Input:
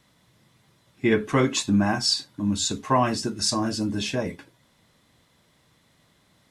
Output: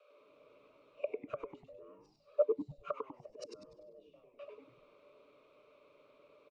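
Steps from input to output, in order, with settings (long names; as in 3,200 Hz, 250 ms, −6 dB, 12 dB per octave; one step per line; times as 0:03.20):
low-pass filter 3,500 Hz 6 dB per octave
gate with flip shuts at −21 dBFS, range −36 dB
formant filter u
frequency shifter +290 Hz
echo with shifted repeats 98 ms, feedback 36%, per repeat −150 Hz, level −4 dB
level +10.5 dB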